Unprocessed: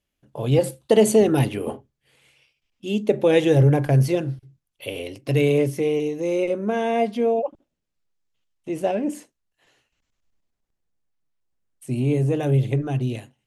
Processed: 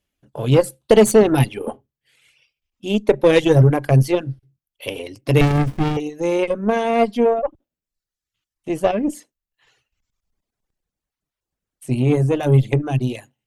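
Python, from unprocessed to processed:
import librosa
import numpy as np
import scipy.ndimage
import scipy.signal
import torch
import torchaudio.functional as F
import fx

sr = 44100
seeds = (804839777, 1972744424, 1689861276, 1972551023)

p1 = fx.dereverb_blind(x, sr, rt60_s=0.95)
p2 = fx.rider(p1, sr, range_db=5, speed_s=2.0)
p3 = p1 + F.gain(torch.from_numpy(p2), -3.0).numpy()
p4 = fx.cheby_harmonics(p3, sr, harmonics=(5, 6, 7), levels_db=(-26, -24, -25), full_scale_db=-1.0)
y = fx.running_max(p4, sr, window=65, at=(5.41, 5.97))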